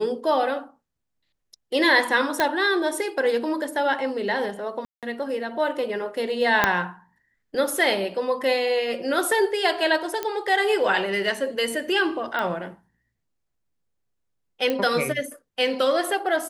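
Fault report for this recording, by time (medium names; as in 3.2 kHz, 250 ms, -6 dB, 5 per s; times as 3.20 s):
2.40 s: pop -7 dBFS
4.85–5.03 s: dropout 177 ms
6.64 s: pop -3 dBFS
10.23 s: pop -12 dBFS
12.39 s: pop -15 dBFS
14.70 s: pop -12 dBFS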